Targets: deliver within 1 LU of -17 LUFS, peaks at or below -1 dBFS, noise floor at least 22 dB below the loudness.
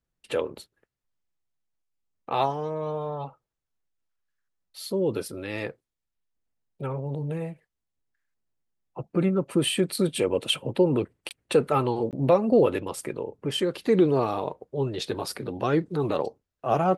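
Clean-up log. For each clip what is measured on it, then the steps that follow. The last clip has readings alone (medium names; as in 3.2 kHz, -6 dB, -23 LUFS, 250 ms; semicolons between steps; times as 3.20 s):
dropouts 2; longest dropout 18 ms; loudness -26.5 LUFS; peak level -8.5 dBFS; loudness target -17.0 LUFS
-> interpolate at 11.29/12.11 s, 18 ms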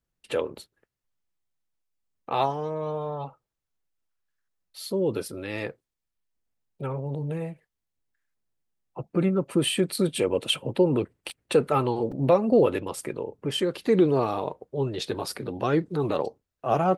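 dropouts 0; loudness -26.5 LUFS; peak level -8.5 dBFS; loudness target -17.0 LUFS
-> trim +9.5 dB; peak limiter -1 dBFS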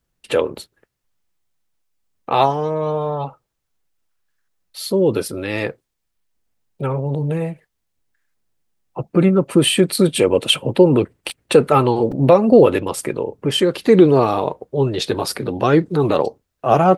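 loudness -17.5 LUFS; peak level -1.0 dBFS; noise floor -75 dBFS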